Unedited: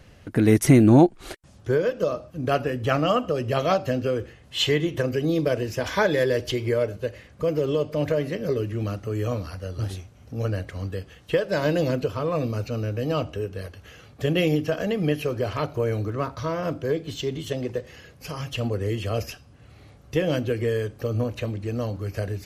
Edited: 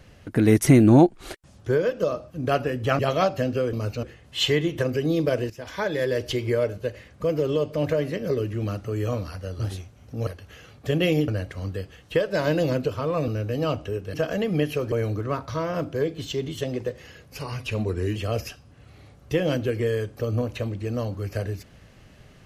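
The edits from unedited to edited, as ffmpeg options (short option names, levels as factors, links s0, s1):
-filter_complex "[0:a]asplit=12[s0][s1][s2][s3][s4][s5][s6][s7][s8][s9][s10][s11];[s0]atrim=end=2.992[s12];[s1]atrim=start=3.478:end=4.222[s13];[s2]atrim=start=12.458:end=12.762[s14];[s3]atrim=start=4.218:end=5.69,asetpts=PTS-STARTPTS,afade=t=out:st=1.468:d=0.004:c=hsin:silence=0.188365[s15];[s4]atrim=start=5.69:end=10.462,asetpts=PTS-STARTPTS,afade=t=in:d=0.85:silence=0.188365[s16];[s5]atrim=start=13.618:end=14.632[s17];[s6]atrim=start=10.458:end=12.462[s18];[s7]atrim=start=12.758:end=13.622[s19];[s8]atrim=start=14.628:end=15.412[s20];[s9]atrim=start=15.808:end=18.284[s21];[s10]atrim=start=18.28:end=18.98,asetpts=PTS-STARTPTS,asetrate=40131,aresample=44100,atrim=end_sample=33923,asetpts=PTS-STARTPTS[s22];[s11]atrim=start=18.976[s23];[s12][s13]acrossfade=d=0.004:c1=hsin:c2=hsin[s24];[s24][s14]acrossfade=d=0.004:c1=hsin:c2=hsin[s25];[s15][s16]concat=n=2:v=0:a=1[s26];[s25][s26]acrossfade=d=0.004:c1=hsin:c2=hsin[s27];[s27][s17]acrossfade=d=0.004:c1=hsin:c2=hsin[s28];[s28][s18]acrossfade=d=0.004:c1=hsin:c2=hsin[s29];[s29][s19]acrossfade=d=0.004:c1=hsin:c2=hsin[s30];[s30][s20]acrossfade=d=0.004:c1=hsin:c2=hsin[s31];[s31][s21]acrossfade=d=0.004:c1=hsin:c2=hsin[s32];[s32][s22]acrossfade=d=0.004:c1=hsin:c2=hsin[s33];[s33][s23]acrossfade=d=0.004:c1=hsin:c2=hsin"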